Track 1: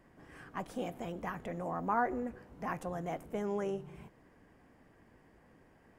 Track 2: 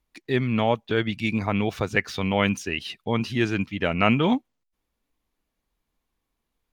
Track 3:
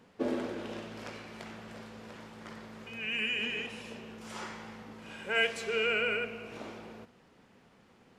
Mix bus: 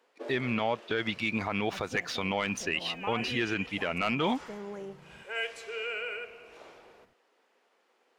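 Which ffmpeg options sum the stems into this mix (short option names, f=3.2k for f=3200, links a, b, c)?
-filter_complex "[0:a]adelay=1150,volume=-5.5dB[a];[1:a]agate=range=-33dB:threshold=-33dB:ratio=3:detection=peak,asplit=2[b][c];[c]highpass=f=720:p=1,volume=13dB,asoftclip=type=tanh:threshold=-3dB[d];[b][d]amix=inputs=2:normalize=0,lowpass=f=4.2k:p=1,volume=-6dB,asoftclip=type=hard:threshold=-5.5dB,volume=-5dB[e];[2:a]highpass=f=380:w=0.5412,highpass=f=380:w=1.3066,volume=-5.5dB[f];[a][e][f]amix=inputs=3:normalize=0,alimiter=limit=-18.5dB:level=0:latency=1:release=111"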